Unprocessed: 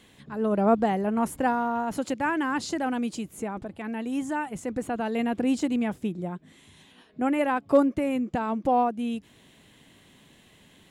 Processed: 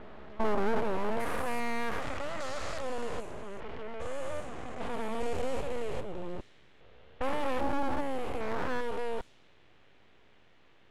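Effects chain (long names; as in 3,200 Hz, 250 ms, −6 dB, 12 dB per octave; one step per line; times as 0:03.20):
spectrum averaged block by block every 400 ms
full-wave rectification
low-pass that shuts in the quiet parts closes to 2,400 Hz, open at −26.5 dBFS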